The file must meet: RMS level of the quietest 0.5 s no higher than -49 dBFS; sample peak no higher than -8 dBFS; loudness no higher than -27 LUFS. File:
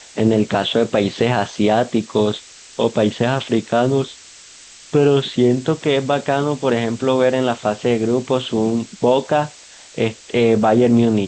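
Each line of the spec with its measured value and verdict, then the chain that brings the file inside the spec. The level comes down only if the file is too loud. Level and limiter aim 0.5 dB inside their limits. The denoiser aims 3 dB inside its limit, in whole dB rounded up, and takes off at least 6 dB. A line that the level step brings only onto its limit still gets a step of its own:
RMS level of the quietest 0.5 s -42 dBFS: fail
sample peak -4.5 dBFS: fail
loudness -18.0 LUFS: fail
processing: gain -9.5 dB

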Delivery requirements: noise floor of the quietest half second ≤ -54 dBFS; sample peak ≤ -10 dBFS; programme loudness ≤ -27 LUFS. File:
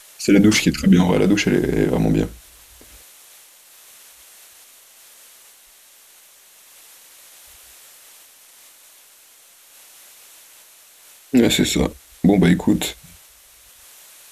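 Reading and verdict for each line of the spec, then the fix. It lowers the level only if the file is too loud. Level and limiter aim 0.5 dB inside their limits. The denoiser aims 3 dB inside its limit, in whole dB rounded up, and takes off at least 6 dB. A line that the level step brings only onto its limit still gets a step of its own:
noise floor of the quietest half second -50 dBFS: fail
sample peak -4.5 dBFS: fail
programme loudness -17.5 LUFS: fail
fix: gain -10 dB

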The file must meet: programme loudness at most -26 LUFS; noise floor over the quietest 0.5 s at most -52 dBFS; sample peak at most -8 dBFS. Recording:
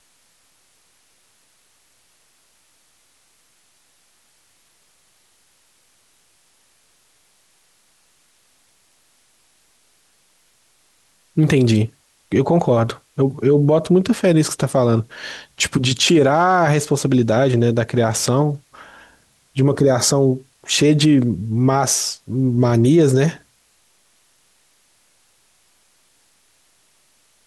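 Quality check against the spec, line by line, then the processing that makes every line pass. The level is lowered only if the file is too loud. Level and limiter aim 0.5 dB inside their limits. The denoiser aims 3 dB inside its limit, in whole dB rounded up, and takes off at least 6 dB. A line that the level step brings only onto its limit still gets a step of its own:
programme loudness -17.0 LUFS: fail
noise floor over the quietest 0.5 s -59 dBFS: OK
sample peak -5.5 dBFS: fail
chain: gain -9.5 dB

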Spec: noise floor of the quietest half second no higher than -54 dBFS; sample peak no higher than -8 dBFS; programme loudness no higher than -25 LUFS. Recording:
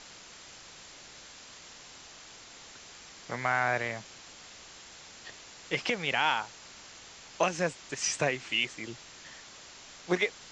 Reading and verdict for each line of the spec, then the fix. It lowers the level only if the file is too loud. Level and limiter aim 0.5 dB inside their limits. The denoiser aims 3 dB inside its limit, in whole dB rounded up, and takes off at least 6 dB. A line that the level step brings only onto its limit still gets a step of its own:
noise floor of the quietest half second -50 dBFS: fail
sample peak -13.5 dBFS: OK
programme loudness -30.5 LUFS: OK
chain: denoiser 7 dB, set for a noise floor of -50 dBFS

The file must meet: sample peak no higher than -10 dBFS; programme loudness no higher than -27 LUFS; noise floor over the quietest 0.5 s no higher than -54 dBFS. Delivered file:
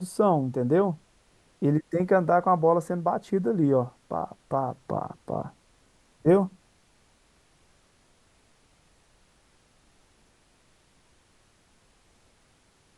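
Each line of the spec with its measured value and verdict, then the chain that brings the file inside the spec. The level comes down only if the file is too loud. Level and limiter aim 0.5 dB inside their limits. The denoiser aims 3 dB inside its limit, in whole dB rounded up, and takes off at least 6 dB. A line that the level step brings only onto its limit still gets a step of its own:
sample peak -9.0 dBFS: fail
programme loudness -25.5 LUFS: fail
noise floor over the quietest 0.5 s -63 dBFS: OK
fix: gain -2 dB

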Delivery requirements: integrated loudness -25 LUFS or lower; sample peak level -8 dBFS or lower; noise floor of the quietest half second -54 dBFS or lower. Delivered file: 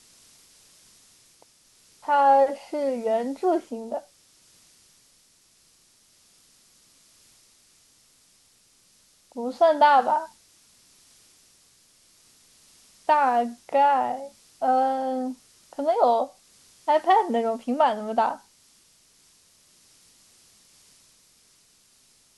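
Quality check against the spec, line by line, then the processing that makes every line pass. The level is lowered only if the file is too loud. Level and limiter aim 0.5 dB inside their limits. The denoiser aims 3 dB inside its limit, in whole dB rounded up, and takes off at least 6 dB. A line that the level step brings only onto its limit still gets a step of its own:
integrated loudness -23.5 LUFS: fail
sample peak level -7.0 dBFS: fail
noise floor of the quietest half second -61 dBFS: OK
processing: gain -2 dB

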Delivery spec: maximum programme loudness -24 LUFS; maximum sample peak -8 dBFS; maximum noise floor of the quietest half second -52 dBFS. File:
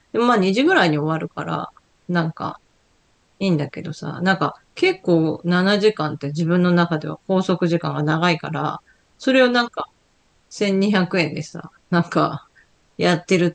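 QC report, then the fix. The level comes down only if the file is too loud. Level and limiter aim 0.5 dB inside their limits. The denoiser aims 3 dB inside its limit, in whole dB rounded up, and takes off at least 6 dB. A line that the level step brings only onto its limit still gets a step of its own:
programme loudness -20.0 LUFS: fail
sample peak -4.0 dBFS: fail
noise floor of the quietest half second -61 dBFS: OK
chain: gain -4.5 dB

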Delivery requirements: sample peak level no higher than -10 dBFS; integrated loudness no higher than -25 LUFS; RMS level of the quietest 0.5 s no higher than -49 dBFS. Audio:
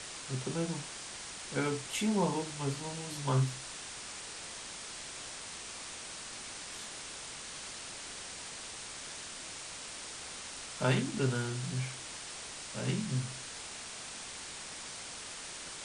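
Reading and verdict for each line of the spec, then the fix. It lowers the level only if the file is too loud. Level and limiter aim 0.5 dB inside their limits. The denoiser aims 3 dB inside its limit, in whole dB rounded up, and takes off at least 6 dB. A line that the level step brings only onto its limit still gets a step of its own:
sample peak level -16.5 dBFS: OK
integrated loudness -37.5 LUFS: OK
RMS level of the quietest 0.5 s -45 dBFS: fail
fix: denoiser 7 dB, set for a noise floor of -45 dBFS

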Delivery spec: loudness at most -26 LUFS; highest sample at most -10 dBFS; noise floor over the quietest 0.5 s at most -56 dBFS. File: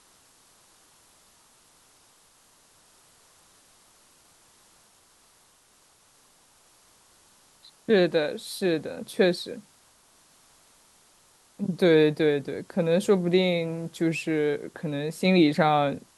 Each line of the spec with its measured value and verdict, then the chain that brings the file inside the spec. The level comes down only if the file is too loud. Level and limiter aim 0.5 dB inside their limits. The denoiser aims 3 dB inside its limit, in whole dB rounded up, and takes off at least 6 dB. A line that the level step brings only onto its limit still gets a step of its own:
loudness -24.5 LUFS: fail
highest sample -7.5 dBFS: fail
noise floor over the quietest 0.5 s -61 dBFS: OK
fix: gain -2 dB; limiter -10.5 dBFS

